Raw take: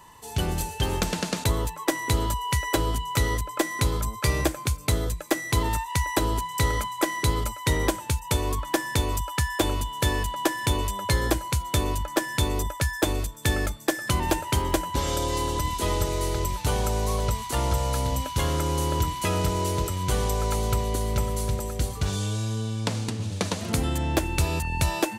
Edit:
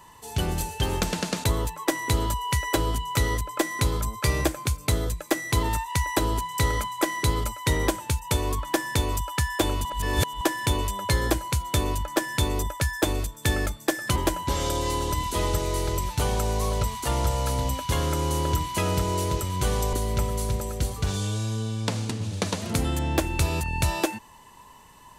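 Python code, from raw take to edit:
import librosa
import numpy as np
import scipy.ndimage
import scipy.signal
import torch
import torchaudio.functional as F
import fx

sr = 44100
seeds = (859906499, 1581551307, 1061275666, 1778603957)

y = fx.edit(x, sr, fx.reverse_span(start_s=9.85, length_s=0.56),
    fx.cut(start_s=14.16, length_s=0.47),
    fx.cut(start_s=20.4, length_s=0.52), tone=tone)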